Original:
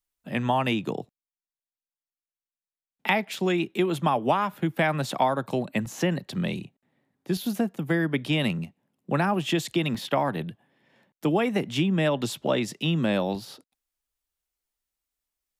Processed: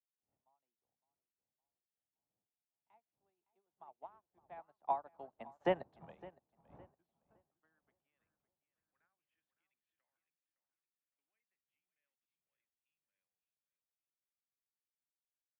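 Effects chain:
wind on the microphone 120 Hz −23 dBFS
source passing by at 0:05.79, 21 m/s, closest 4.4 metres
band-pass filter sweep 790 Hz → 2,100 Hz, 0:06.44–0:09.84
on a send: feedback echo with a low-pass in the loop 562 ms, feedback 52%, low-pass 3,900 Hz, level −8.5 dB
on the sum: expander for the loud parts 2.5 to 1, over −57 dBFS
level +6.5 dB

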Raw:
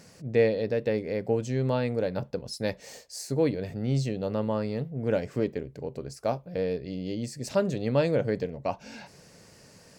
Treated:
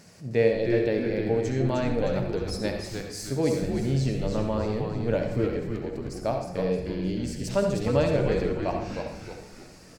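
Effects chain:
notch filter 500 Hz, Q 14
echo with shifted repeats 309 ms, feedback 44%, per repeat −110 Hz, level −5 dB
on a send at −4 dB: convolution reverb RT60 0.70 s, pre-delay 59 ms

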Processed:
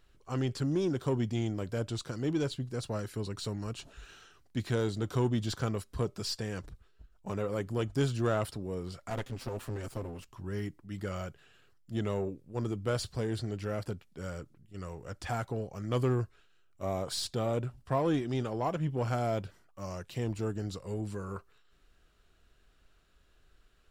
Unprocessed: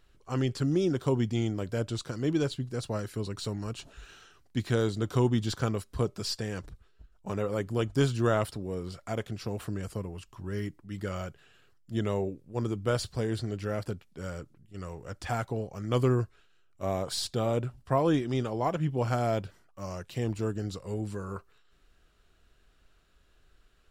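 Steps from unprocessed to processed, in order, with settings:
0:09.10–0:10.30: lower of the sound and its delayed copy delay 7.7 ms
in parallel at −3 dB: soft clipping −28.5 dBFS, distortion −9 dB
on the sum: level −6 dB

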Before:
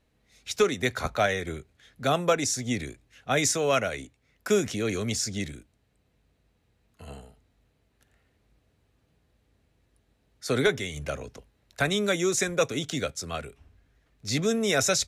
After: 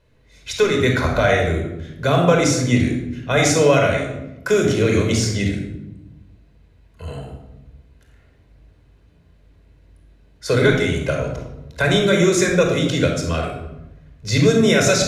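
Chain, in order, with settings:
high-shelf EQ 5,600 Hz −8 dB
brickwall limiter −17 dBFS, peak gain reduction 5 dB
convolution reverb RT60 0.95 s, pre-delay 25 ms, DRR 1.5 dB
level +6.5 dB

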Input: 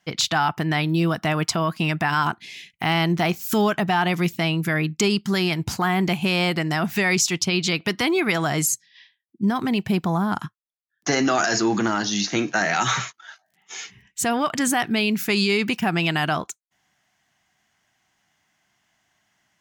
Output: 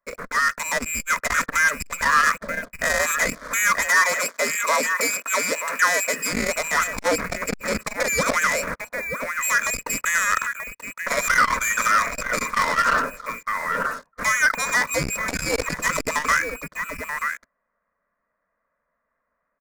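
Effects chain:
variable-slope delta modulation 64 kbit/s
slap from a distant wall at 160 metres, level −10 dB
voice inversion scrambler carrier 2,700 Hz
leveller curve on the samples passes 3
0:03.86–0:06.33: high-pass filter 350 Hz 12 dB per octave
phaser with its sweep stopped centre 530 Hz, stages 8
automatic gain control gain up to 7.5 dB
saturating transformer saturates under 590 Hz
level −4 dB

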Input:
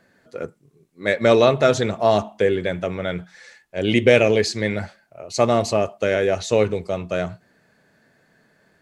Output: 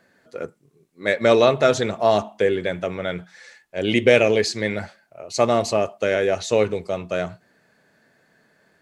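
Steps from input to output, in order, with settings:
low-shelf EQ 160 Hz −6.5 dB

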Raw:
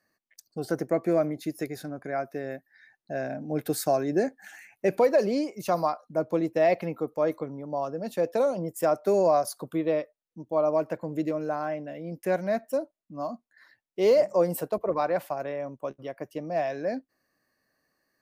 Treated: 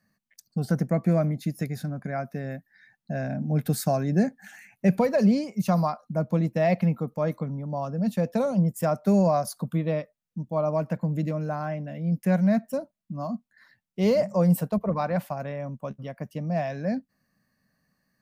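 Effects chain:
low shelf with overshoot 260 Hz +8.5 dB, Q 3

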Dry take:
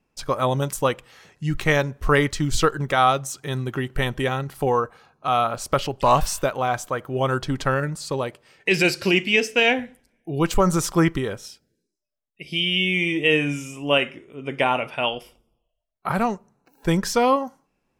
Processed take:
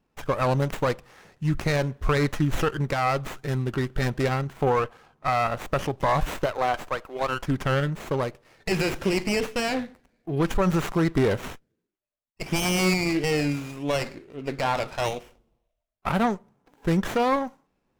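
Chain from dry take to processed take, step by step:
0:06.45–0:07.46: high-pass filter 350 Hz → 760 Hz 12 dB per octave
brickwall limiter −13 dBFS, peak gain reduction 7.5 dB
0:11.17–0:12.94: leveller curve on the samples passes 2
windowed peak hold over 9 samples

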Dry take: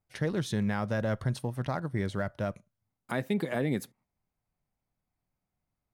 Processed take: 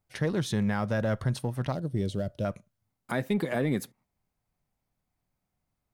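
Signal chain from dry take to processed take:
in parallel at −7 dB: soft clipping −29 dBFS, distortion −10 dB
0:01.72–0:02.45: on the sum: flat-topped bell 1,300 Hz −15 dB

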